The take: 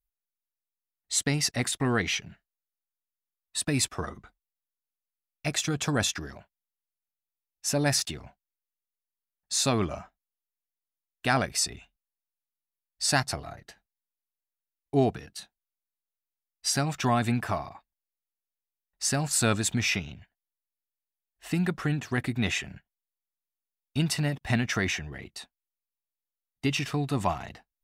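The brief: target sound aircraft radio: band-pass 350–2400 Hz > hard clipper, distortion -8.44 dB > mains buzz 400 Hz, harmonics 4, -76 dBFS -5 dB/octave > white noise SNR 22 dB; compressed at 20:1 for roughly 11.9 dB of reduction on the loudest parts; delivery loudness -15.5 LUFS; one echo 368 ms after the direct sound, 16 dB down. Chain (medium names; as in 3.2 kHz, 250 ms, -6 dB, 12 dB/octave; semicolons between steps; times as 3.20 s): compression 20:1, threshold -31 dBFS; band-pass 350–2400 Hz; delay 368 ms -16 dB; hard clipper -37.5 dBFS; mains buzz 400 Hz, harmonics 4, -76 dBFS -5 dB/octave; white noise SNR 22 dB; trim +30 dB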